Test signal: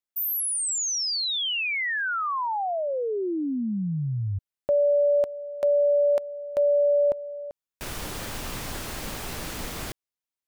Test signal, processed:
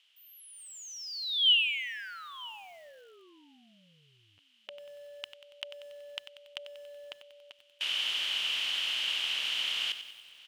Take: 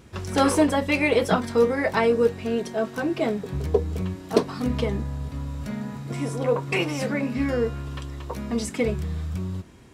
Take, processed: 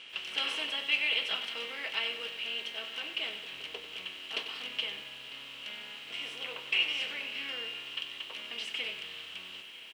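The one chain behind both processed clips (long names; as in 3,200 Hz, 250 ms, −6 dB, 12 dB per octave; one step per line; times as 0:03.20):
compressor on every frequency bin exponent 0.6
resonant band-pass 3,000 Hz, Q 9.4
on a send: single-tap delay 948 ms −21.5 dB
on the sum: feedback echo at a low word length 94 ms, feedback 55%, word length 10 bits, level −10.5 dB
level +6 dB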